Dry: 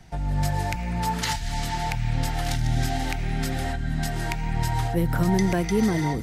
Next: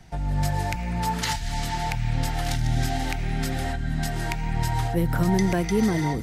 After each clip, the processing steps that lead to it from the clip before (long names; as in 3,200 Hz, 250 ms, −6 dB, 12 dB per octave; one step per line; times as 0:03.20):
no processing that can be heard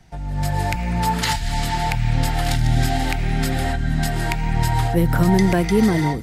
dynamic equaliser 6,000 Hz, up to −6 dB, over −55 dBFS, Q 6.6
automatic gain control gain up to 8.5 dB
level −2 dB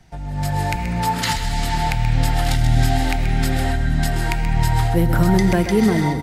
single-tap delay 130 ms −10 dB
on a send at −18 dB: convolution reverb RT60 2.2 s, pre-delay 3 ms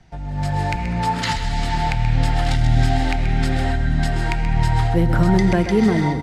high-frequency loss of the air 69 metres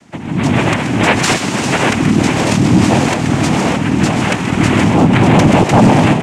cochlear-implant simulation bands 4
in parallel at −4 dB: sine wavefolder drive 7 dB, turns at −3.5 dBFS